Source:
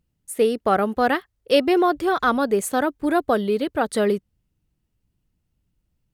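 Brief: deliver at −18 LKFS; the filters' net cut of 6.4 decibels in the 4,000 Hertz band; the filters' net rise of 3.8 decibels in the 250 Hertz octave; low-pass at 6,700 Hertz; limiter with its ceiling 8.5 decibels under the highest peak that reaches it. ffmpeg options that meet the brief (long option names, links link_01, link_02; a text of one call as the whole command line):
ffmpeg -i in.wav -af "lowpass=6700,equalizer=frequency=250:width_type=o:gain=5,equalizer=frequency=4000:width_type=o:gain=-9,volume=5dB,alimiter=limit=-9dB:level=0:latency=1" out.wav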